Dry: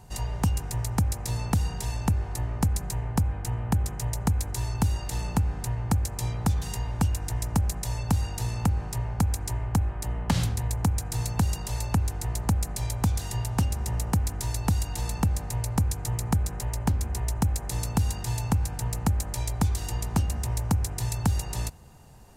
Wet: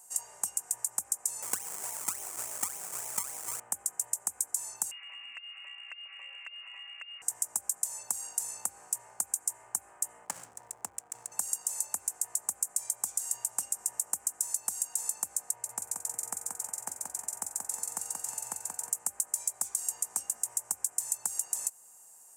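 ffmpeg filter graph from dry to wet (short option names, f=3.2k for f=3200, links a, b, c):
-filter_complex "[0:a]asettb=1/sr,asplit=3[a][b][c];[a]atrim=end=1.424[d];[b]atrim=start=1.42:end=3.6,asetpts=PTS-STARTPTS,afade=t=in:d=0.004:c=qsin,afade=t=out:st=2.176:d=0.004:c=qsin,lowpass=f=1.3k:w=0.5412,lowpass=f=1.3k:w=1.3066,acrusher=samples=28:mix=1:aa=0.000001:lfo=1:lforange=28:lforate=3.5,acontrast=78[e];[c]atrim=start=3.596[f];[d][e]acrossfade=d=0.004:c1=hsin:c2=qsin[g];[g][f]acrossfade=d=0.004:c1=qsin:c2=hsin,asettb=1/sr,asplit=3[h][i][j];[h]atrim=end=4.914[k];[i]atrim=start=4.91:end=7.22,asetpts=PTS-STARTPTS,afade=t=in:d=0.004:c=qsin,afade=t=out:st=2.306:d=0.004:c=qsin,aecho=1:1:5.2:0.68,atrim=end_sample=101871,lowpass=f=2.5k:t=q:w=0.5098,lowpass=f=2.5k:t=q:w=0.6013,lowpass=f=2.5k:t=q:w=0.9,lowpass=f=2.5k:t=q:w=2.563,afreqshift=-2900,acompressor=threshold=-30dB:ratio=4:attack=3.2:release=140:knee=1:detection=peak[l];[j]atrim=start=7.216[m];[k][l]acrossfade=d=0.004:c1=hsin:c2=qsin[n];[n][m]acrossfade=d=0.004:c1=qsin:c2=hsin,asettb=1/sr,asplit=3[o][p][q];[o]atrim=end=10.254[r];[p]atrim=start=10.25:end=11.32,asetpts=PTS-STARTPTS,afade=t=in:d=0.004:c=qsin,afade=t=out:st=1.066:d=0.004:c=qsin,highshelf=f=11k:g=9.5,adynamicsmooth=sensitivity=4:basefreq=680,aeval=exprs='sgn(val(0))*max(abs(val(0))-0.00501,0)':c=same[s];[q]atrim=start=11.316[t];[r][s]acrossfade=d=0.004:c1=hsin:c2=qsin[u];[u][t]acrossfade=d=0.004:c1=qsin:c2=hsin,asettb=1/sr,asplit=3[v][w][x];[v]atrim=end=15.514[y];[w]atrim=start=15.51:end=18.9,asetpts=PTS-STARTPTS,afade=t=in:d=0.004:c=qsin,afade=t=out:st=3.386:d=0.004:c=qsin,highshelf=f=4.3k:g=-10,aecho=1:1:181|362|543|724|905:0.631|0.265|0.111|0.0467|0.0196,atrim=end_sample=149499[z];[x]atrim=start=18.896[aa];[y][z]acrossfade=d=0.004:c1=hsin:c2=qsin[ab];[ab][aa]acrossfade=d=0.004:c1=qsin:c2=hsin,highpass=700,highshelf=f=5.5k:t=q:w=3:g=14,acompressor=threshold=-19dB:ratio=3,volume=-8.5dB"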